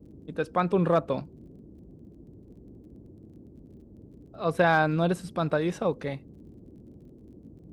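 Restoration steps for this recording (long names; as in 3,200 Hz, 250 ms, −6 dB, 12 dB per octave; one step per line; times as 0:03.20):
clipped peaks rebuilt −11.5 dBFS
click removal
noise reduction from a noise print 21 dB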